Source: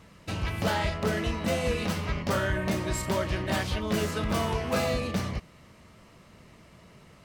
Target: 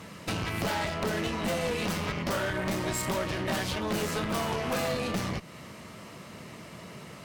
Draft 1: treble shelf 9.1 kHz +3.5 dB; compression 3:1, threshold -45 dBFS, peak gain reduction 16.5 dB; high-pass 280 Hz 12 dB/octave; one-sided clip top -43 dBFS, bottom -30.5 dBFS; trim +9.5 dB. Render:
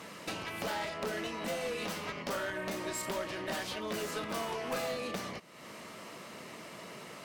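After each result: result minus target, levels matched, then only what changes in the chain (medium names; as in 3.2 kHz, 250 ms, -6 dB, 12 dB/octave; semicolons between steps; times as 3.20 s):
compression: peak gain reduction +7 dB; 125 Hz band -7.0 dB
change: compression 3:1, threshold -34.5 dBFS, peak gain reduction 9.5 dB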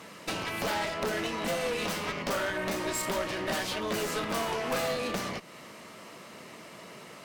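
125 Hz band -7.5 dB
change: high-pass 120 Hz 12 dB/octave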